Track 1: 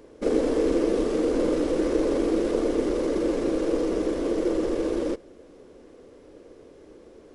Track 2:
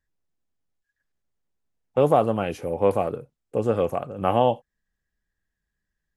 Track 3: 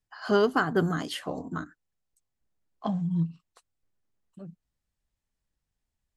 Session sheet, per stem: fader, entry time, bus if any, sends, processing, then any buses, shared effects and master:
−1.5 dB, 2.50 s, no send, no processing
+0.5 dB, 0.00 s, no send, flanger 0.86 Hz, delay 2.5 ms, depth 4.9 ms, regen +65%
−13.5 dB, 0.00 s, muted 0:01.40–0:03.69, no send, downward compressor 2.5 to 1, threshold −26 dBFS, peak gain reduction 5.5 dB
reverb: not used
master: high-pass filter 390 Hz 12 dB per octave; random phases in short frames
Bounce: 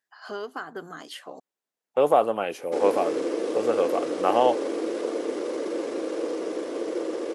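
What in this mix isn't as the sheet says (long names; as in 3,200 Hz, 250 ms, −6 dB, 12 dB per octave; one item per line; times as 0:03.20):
stem 2: missing flanger 0.86 Hz, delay 2.5 ms, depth 4.9 ms, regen +65%
stem 3 −13.5 dB → −4.5 dB
master: missing random phases in short frames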